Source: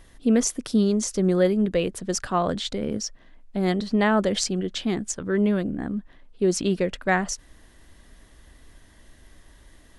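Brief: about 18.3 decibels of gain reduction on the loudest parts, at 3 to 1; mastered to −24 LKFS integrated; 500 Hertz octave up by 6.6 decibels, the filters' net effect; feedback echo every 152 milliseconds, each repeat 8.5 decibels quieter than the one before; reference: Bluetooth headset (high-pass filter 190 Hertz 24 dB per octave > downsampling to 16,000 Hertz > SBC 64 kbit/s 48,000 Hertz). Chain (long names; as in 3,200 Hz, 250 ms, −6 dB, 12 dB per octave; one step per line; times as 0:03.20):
parametric band 500 Hz +8.5 dB
downward compressor 3 to 1, threshold −36 dBFS
high-pass filter 190 Hz 24 dB per octave
repeating echo 152 ms, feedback 38%, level −8.5 dB
downsampling to 16,000 Hz
level +11.5 dB
SBC 64 kbit/s 48,000 Hz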